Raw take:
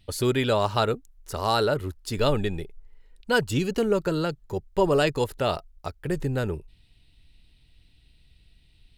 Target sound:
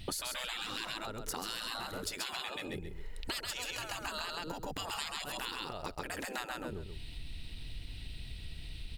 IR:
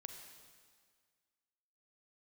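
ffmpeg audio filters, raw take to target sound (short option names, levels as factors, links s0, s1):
-af "aecho=1:1:132|264|396:0.708|0.142|0.0283,afftfilt=real='re*lt(hypot(re,im),0.0891)':imag='im*lt(hypot(re,im),0.0891)':win_size=1024:overlap=0.75,acompressor=threshold=0.00355:ratio=12,volume=4.47"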